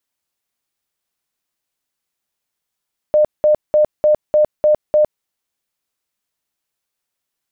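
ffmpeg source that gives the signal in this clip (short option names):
-f lavfi -i "aevalsrc='0.376*sin(2*PI*605*mod(t,0.3))*lt(mod(t,0.3),65/605)':d=2.1:s=44100"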